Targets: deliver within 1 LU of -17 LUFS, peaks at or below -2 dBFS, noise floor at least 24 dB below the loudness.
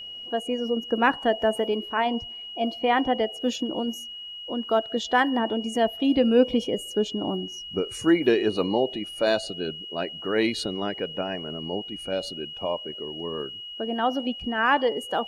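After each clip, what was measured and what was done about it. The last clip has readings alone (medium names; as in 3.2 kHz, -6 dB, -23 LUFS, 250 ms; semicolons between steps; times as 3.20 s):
steady tone 2.9 kHz; tone level -36 dBFS; loudness -26.0 LUFS; peak level -6.5 dBFS; loudness target -17.0 LUFS
-> band-stop 2.9 kHz, Q 30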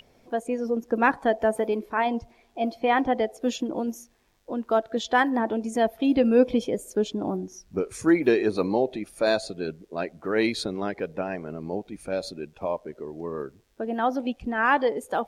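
steady tone not found; loudness -26.0 LUFS; peak level -7.0 dBFS; loudness target -17.0 LUFS
-> trim +9 dB; peak limiter -2 dBFS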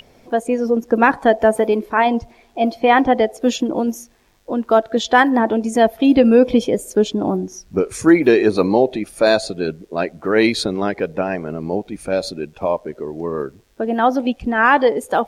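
loudness -17.5 LUFS; peak level -2.0 dBFS; noise floor -53 dBFS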